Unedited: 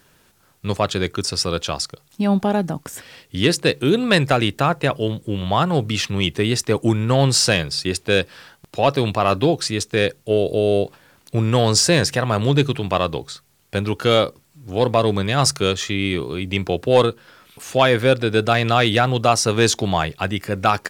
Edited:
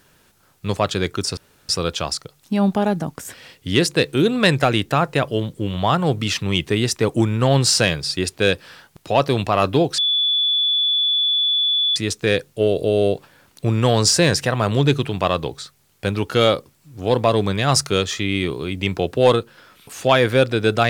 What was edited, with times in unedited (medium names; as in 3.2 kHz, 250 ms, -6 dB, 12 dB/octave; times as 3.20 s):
1.37 s: insert room tone 0.32 s
9.66 s: add tone 3.45 kHz -15.5 dBFS 1.98 s